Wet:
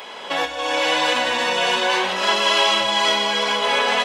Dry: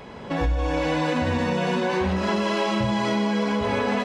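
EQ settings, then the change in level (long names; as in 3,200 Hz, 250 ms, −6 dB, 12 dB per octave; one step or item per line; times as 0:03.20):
high-pass filter 650 Hz 12 dB per octave
parametric band 3,200 Hz +8 dB 0.44 octaves
high-shelf EQ 6,300 Hz +9.5 dB
+7.5 dB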